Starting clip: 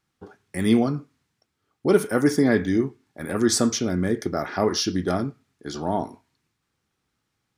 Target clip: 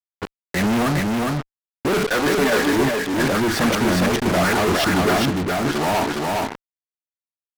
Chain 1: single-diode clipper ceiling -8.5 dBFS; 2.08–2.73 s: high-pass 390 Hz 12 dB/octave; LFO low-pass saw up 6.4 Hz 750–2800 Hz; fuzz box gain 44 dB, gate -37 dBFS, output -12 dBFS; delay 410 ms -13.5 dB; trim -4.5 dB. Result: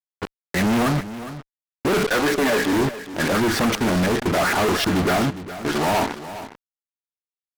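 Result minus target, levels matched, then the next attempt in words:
echo-to-direct -11 dB
single-diode clipper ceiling -8.5 dBFS; 2.08–2.73 s: high-pass 390 Hz 12 dB/octave; LFO low-pass saw up 6.4 Hz 750–2800 Hz; fuzz box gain 44 dB, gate -37 dBFS, output -12 dBFS; delay 410 ms -2.5 dB; trim -4.5 dB

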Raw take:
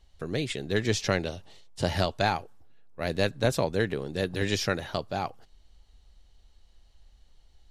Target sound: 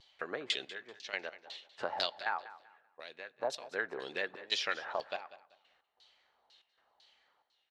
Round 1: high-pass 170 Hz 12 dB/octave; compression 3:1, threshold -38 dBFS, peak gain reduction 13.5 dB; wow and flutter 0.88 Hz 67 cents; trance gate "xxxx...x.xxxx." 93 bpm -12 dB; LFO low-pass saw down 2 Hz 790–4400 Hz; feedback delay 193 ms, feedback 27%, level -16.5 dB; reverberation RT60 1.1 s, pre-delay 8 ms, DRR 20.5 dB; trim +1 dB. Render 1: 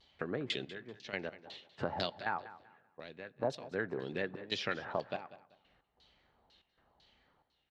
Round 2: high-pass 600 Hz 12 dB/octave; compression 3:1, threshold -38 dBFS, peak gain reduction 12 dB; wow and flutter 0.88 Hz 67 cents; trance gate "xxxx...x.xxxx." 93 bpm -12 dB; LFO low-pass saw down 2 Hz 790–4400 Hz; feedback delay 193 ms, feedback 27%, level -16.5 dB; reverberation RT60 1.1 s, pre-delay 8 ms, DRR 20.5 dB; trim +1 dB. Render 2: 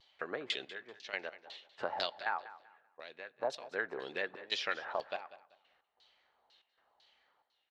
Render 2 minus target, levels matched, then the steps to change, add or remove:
8 kHz band -5.0 dB
add after compression: treble shelf 6 kHz +11.5 dB

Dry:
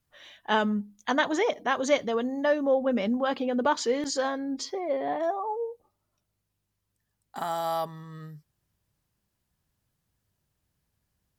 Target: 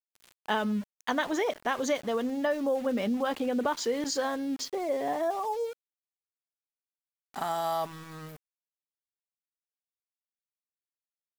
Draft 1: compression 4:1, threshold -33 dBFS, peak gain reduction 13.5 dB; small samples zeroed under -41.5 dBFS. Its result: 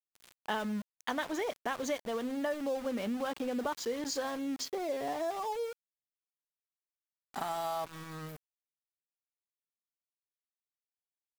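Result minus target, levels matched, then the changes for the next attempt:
compression: peak gain reduction +6 dB
change: compression 4:1, threshold -25 dBFS, peak gain reduction 7.5 dB

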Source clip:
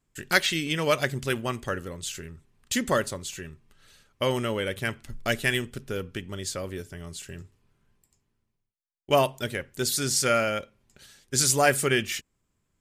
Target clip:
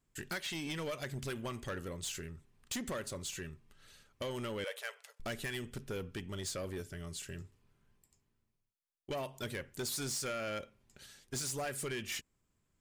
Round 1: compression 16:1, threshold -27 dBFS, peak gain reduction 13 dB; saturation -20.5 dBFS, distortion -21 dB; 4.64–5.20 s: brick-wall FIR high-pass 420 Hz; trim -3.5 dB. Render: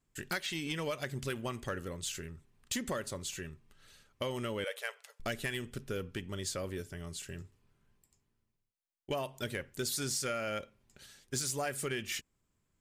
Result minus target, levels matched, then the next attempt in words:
saturation: distortion -10 dB
compression 16:1, threshold -27 dBFS, peak gain reduction 13 dB; saturation -29.5 dBFS, distortion -11 dB; 4.64–5.20 s: brick-wall FIR high-pass 420 Hz; trim -3.5 dB

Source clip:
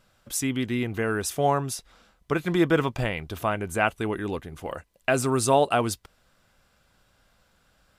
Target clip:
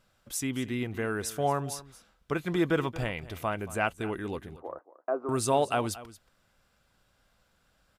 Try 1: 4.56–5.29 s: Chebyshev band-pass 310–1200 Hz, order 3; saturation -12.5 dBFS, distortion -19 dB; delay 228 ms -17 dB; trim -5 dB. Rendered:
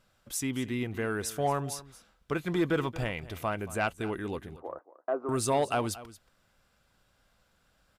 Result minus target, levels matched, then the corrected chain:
saturation: distortion +18 dB
4.56–5.29 s: Chebyshev band-pass 310–1200 Hz, order 3; saturation -2 dBFS, distortion -36 dB; delay 228 ms -17 dB; trim -5 dB

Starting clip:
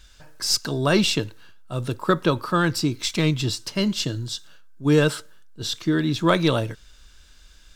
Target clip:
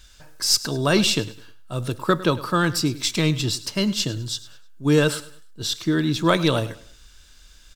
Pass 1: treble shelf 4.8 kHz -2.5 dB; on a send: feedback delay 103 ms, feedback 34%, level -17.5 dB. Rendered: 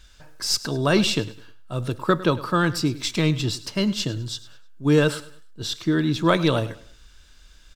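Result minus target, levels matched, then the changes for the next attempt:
8 kHz band -4.0 dB
change: treble shelf 4.8 kHz +5 dB

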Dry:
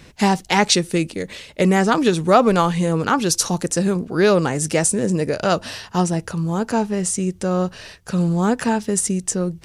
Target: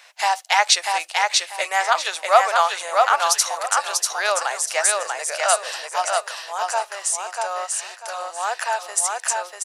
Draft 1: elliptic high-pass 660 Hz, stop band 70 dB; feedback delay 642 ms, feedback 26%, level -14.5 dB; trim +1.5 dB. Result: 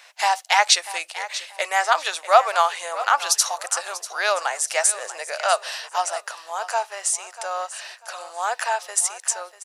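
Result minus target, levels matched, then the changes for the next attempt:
echo-to-direct -11.5 dB
change: feedback delay 642 ms, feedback 26%, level -3 dB

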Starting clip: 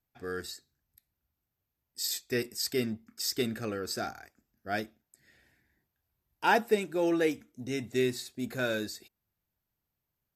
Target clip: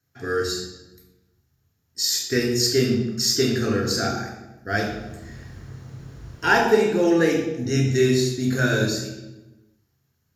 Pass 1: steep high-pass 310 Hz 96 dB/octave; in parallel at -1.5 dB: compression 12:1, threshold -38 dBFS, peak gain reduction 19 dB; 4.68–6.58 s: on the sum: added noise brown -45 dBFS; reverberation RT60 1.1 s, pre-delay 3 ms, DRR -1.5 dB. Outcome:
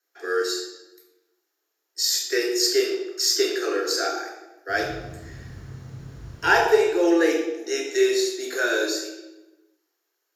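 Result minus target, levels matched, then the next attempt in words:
250 Hz band -3.5 dB
in parallel at -1.5 dB: compression 12:1, threshold -38 dBFS, peak gain reduction 19 dB; 4.68–6.58 s: on the sum: added noise brown -45 dBFS; reverberation RT60 1.1 s, pre-delay 3 ms, DRR -1.5 dB

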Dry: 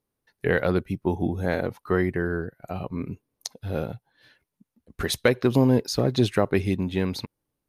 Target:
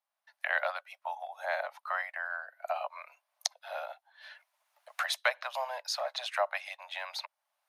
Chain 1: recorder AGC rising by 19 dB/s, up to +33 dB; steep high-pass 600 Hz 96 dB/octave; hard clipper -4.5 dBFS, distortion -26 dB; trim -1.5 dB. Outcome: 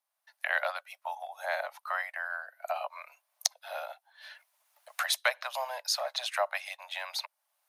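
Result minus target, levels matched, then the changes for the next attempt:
8 kHz band +4.5 dB
add after steep high-pass: treble shelf 6 kHz -11.5 dB

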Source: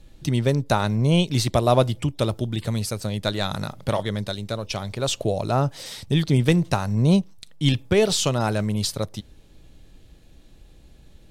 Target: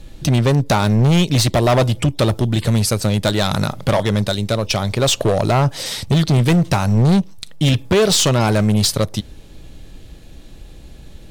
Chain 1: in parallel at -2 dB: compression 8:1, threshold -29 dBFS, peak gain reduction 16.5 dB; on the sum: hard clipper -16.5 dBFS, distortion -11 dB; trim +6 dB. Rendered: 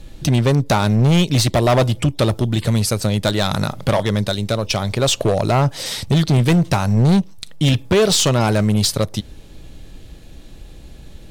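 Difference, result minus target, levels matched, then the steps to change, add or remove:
compression: peak gain reduction +5 dB
change: compression 8:1, threshold -23 dBFS, peak gain reduction 11 dB

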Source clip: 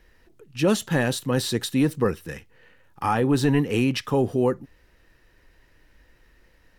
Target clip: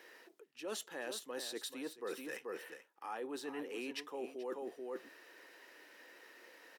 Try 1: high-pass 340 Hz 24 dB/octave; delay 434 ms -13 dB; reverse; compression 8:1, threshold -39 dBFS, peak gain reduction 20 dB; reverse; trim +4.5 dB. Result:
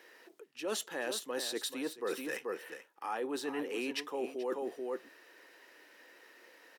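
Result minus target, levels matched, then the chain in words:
compression: peak gain reduction -6 dB
high-pass 340 Hz 24 dB/octave; delay 434 ms -13 dB; reverse; compression 8:1, threshold -46 dBFS, peak gain reduction 26.5 dB; reverse; trim +4.5 dB

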